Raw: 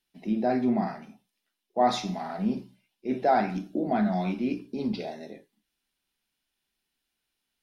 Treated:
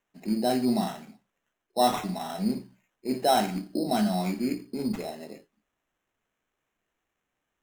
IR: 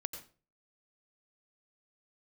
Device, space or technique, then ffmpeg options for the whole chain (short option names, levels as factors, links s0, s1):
crushed at another speed: -af "asetrate=22050,aresample=44100,acrusher=samples=19:mix=1:aa=0.000001,asetrate=88200,aresample=44100"